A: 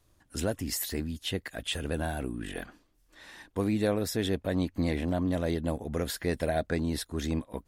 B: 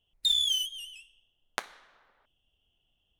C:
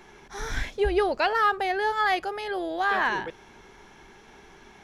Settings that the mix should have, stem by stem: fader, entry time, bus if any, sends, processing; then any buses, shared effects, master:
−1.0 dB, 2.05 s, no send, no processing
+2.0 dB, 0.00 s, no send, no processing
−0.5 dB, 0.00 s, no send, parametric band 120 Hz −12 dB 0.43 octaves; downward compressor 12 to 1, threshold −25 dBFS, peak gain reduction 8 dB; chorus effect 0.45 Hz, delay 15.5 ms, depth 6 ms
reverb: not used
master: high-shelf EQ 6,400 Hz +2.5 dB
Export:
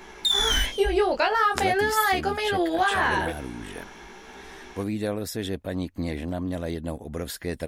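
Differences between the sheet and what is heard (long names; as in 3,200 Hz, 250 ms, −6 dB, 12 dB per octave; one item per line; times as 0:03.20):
stem A: entry 2.05 s → 1.20 s
stem C −0.5 dB → +9.5 dB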